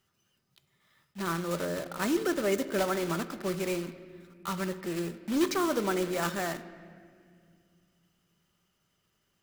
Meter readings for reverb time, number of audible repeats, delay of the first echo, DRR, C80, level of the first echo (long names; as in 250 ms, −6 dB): 2.0 s, no echo audible, no echo audible, 9.5 dB, 14.5 dB, no echo audible